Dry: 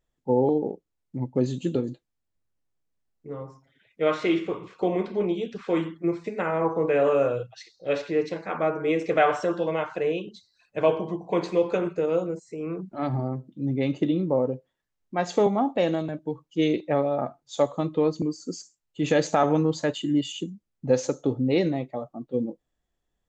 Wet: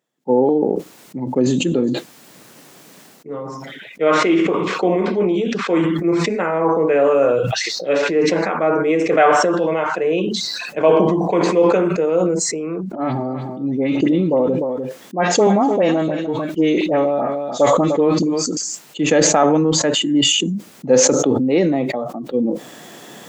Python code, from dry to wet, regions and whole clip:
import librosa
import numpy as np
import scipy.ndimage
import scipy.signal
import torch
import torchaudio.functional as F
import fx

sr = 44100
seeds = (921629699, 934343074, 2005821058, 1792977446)

y = fx.chain(x, sr, fx.dispersion(late='highs', ms=60.0, hz=1600.0),
    fx.echo_single(ms=300, db=-15.5), at=(12.95, 18.57))
y = scipy.signal.sosfilt(scipy.signal.butter(4, 170.0, 'highpass', fs=sr, output='sos'), y)
y = fx.dynamic_eq(y, sr, hz=4000.0, q=1.7, threshold_db=-52.0, ratio=4.0, max_db=-7)
y = fx.sustainer(y, sr, db_per_s=23.0)
y = F.gain(torch.from_numpy(y), 6.5).numpy()